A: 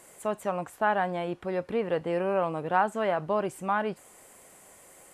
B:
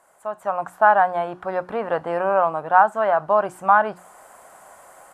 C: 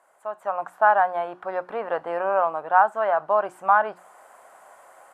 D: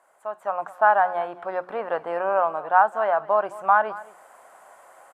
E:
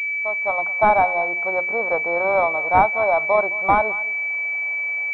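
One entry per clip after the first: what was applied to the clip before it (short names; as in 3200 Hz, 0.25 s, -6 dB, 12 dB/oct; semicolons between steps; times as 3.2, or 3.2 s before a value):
AGC gain up to 12 dB; band shelf 990 Hz +13 dB; notches 60/120/180/240/300/360 Hz; gain -11.5 dB
tone controls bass -13 dB, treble -6 dB; gain -2.5 dB
echo 0.212 s -18.5 dB
pulse-width modulation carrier 2300 Hz; gain +4 dB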